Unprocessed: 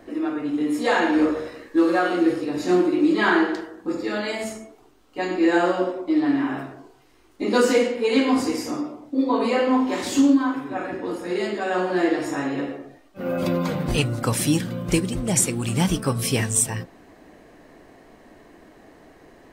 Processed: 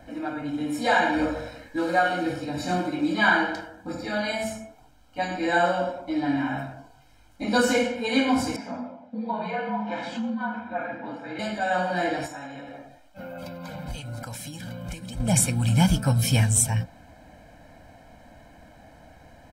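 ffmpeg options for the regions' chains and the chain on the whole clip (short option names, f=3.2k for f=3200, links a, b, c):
-filter_complex "[0:a]asettb=1/sr,asplit=3[a][b][c];[a]atrim=end=8.564[d];[b]atrim=start=8.56:end=11.39,asetpts=PTS-STARTPTS,afade=t=in:d=0.004:c=qsin,afade=t=out:st=2.826:d=0.004:c=qsin,acompressor=threshold=-22dB:ratio=2.5:attack=3.2:release=140:knee=1:detection=peak,afreqshift=-48,highpass=300,lowpass=2.5k[e];[c]atrim=start=11.386[f];[d][e]acrossfade=d=0.004:c1=hsin:c2=qsin[g];[g][f]acrossfade=d=0.004:c1=qsin:c2=hsin,asettb=1/sr,asplit=3[h][i][j];[h]atrim=end=12.264[k];[i]atrim=start=12.26:end=15.2,asetpts=PTS-STARTPTS,afade=t=in:d=0.004:c=qsin,afade=t=out:st=2.936:d=0.004:c=qsin,equalizer=f=110:t=o:w=2.4:g=-8,acompressor=threshold=-32dB:ratio=12:attack=3.2:release=140:knee=1:detection=peak[l];[j]atrim=start=15.196[m];[k][l]acrossfade=d=0.004:c1=hsin:c2=qsin[n];[n][m]acrossfade=d=0.004:c1=qsin:c2=hsin,equalizer=f=74:w=0.82:g=7,aecho=1:1:1.3:0.99,volume=-3.5dB"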